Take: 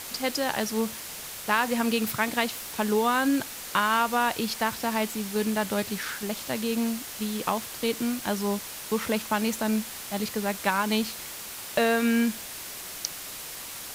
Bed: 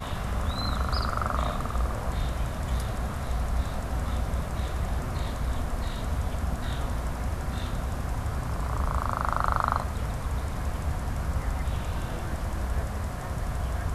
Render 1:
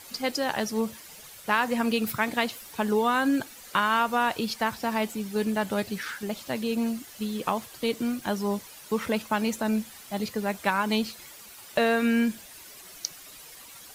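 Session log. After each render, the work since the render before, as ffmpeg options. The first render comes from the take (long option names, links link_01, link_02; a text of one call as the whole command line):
ffmpeg -i in.wav -af "afftdn=noise_reduction=11:noise_floor=-39" out.wav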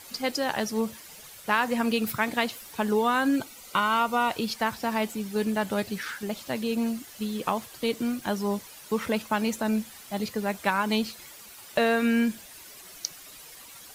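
ffmpeg -i in.wav -filter_complex "[0:a]asettb=1/sr,asplit=3[link_01][link_02][link_03];[link_01]atrim=end=3.364[link_04];[link_02]atrim=start=3.36:end=4.31,asetpts=PTS-STARTPTS,afade=type=in:duration=0.004:curve=qsin,afade=type=out:start_time=0.946:duration=0.004:curve=qsin,asuperstop=centerf=1700:order=8:qfactor=5.8[link_05];[link_03]atrim=start=4.306[link_06];[link_04][link_05]acrossfade=duration=0.004:curve1=hsin:curve2=qsin[link_07];[link_07][link_06]acrossfade=duration=0.004:curve1=qsin:curve2=hsin" out.wav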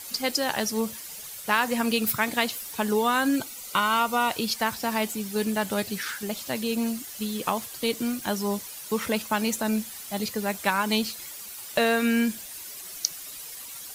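ffmpeg -i in.wav -af "highshelf=frequency=4000:gain=9" out.wav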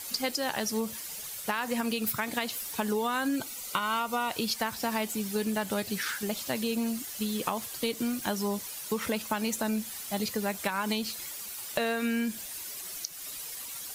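ffmpeg -i in.wav -af "alimiter=limit=-13.5dB:level=0:latency=1:release=208,acompressor=threshold=-26dB:ratio=6" out.wav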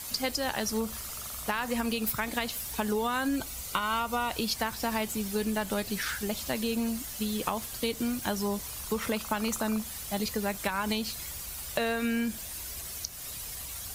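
ffmpeg -i in.wav -i bed.wav -filter_complex "[1:a]volume=-20dB[link_01];[0:a][link_01]amix=inputs=2:normalize=0" out.wav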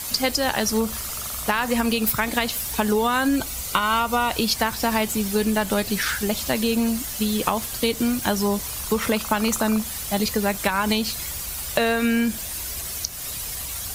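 ffmpeg -i in.wav -af "volume=8.5dB" out.wav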